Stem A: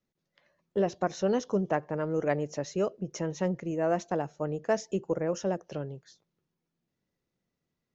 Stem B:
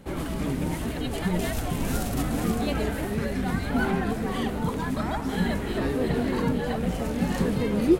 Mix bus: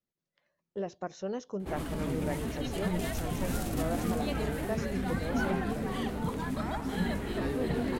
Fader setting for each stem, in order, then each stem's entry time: −8.5, −5.5 decibels; 0.00, 1.60 seconds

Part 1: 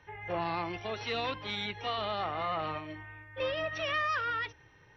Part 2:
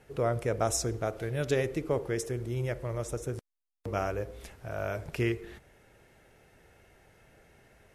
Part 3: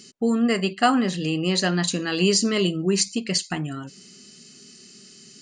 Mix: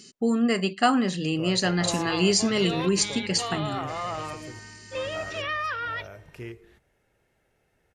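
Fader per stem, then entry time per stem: +1.5, −10.0, −2.0 decibels; 1.55, 1.20, 0.00 seconds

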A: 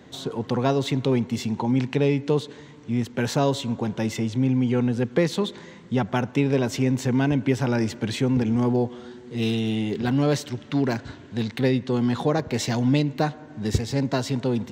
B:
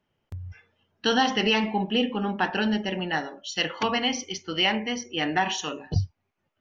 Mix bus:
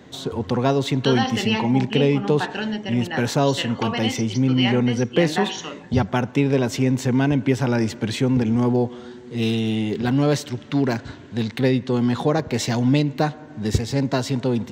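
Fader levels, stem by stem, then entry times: +2.5, −1.5 decibels; 0.00, 0.00 seconds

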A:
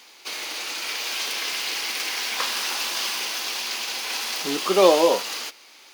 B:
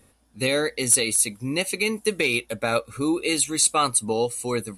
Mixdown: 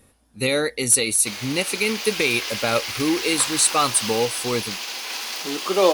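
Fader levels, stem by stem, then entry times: −1.5, +1.5 decibels; 1.00, 0.00 seconds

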